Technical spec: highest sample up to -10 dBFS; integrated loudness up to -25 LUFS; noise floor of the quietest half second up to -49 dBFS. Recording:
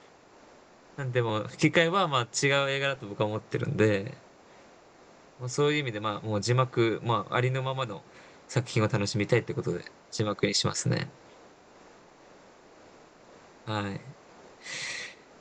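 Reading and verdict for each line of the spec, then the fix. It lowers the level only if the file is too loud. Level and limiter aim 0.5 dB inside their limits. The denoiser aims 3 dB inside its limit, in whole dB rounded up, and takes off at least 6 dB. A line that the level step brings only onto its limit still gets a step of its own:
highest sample -9.5 dBFS: fail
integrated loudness -28.5 LUFS: pass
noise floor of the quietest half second -55 dBFS: pass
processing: peak limiter -10.5 dBFS

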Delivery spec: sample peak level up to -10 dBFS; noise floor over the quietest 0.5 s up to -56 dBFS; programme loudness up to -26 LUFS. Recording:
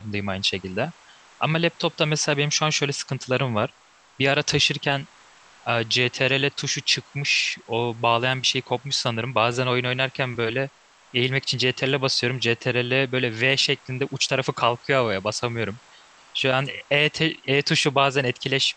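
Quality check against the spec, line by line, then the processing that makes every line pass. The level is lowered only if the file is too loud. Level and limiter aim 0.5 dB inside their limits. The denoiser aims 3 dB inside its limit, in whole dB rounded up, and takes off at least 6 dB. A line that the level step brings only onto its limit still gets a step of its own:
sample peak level -5.0 dBFS: fail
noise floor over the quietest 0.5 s -54 dBFS: fail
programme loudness -22.5 LUFS: fail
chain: trim -4 dB; peak limiter -10.5 dBFS

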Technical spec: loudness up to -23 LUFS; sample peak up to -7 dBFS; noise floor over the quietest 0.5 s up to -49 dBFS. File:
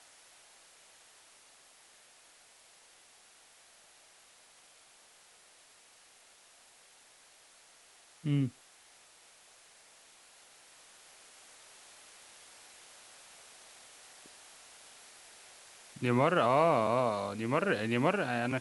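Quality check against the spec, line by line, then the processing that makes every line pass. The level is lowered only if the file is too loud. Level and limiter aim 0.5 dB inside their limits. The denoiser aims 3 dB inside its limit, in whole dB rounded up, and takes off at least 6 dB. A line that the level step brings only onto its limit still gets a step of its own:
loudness -30.0 LUFS: pass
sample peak -13.0 dBFS: pass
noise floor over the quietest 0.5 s -61 dBFS: pass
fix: none needed

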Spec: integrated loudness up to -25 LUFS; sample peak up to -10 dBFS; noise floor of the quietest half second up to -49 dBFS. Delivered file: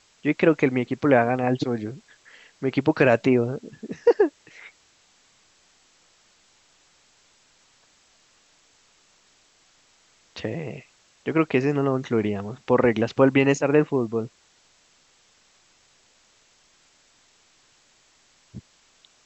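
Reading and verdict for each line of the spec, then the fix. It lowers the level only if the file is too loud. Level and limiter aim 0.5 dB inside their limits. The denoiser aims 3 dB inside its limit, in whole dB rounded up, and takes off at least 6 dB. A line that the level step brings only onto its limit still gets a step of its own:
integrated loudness -22.5 LUFS: fail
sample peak -5.5 dBFS: fail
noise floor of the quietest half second -60 dBFS: pass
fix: trim -3 dB; peak limiter -10.5 dBFS

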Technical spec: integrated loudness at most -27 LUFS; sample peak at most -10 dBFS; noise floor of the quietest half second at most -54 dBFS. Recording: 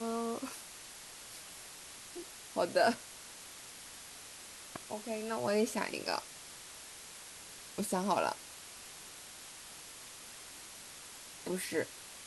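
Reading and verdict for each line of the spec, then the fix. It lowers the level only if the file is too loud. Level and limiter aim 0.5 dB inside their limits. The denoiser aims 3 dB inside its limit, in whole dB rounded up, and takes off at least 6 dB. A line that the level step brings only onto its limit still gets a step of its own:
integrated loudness -39.0 LUFS: pass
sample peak -16.0 dBFS: pass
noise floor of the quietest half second -51 dBFS: fail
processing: noise reduction 6 dB, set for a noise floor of -51 dBFS

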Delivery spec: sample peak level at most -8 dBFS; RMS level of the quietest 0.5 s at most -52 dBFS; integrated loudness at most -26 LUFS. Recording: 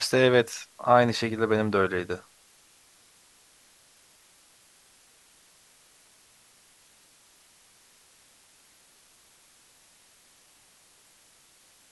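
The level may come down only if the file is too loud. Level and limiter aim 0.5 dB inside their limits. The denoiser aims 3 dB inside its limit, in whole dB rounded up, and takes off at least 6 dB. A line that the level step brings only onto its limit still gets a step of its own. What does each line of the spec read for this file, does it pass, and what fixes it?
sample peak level -5.0 dBFS: fail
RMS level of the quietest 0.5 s -59 dBFS: pass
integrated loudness -24.5 LUFS: fail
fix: trim -2 dB; peak limiter -8.5 dBFS

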